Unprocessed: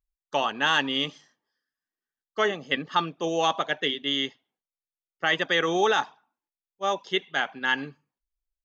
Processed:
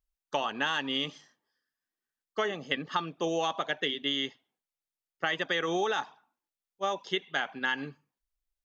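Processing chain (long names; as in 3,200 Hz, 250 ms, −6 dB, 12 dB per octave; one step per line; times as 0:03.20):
downward compressor, threshold −26 dBFS, peak gain reduction 9 dB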